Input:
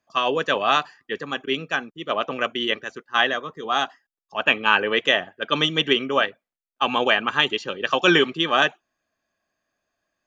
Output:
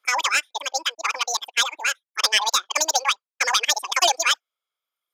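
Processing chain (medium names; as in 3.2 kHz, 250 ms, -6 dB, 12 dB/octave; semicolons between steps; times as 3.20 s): single-diode clipper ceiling -15 dBFS; high-pass 290 Hz 12 dB/octave; reverb removal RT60 1.7 s; speed mistake 7.5 ips tape played at 15 ips; trim +2.5 dB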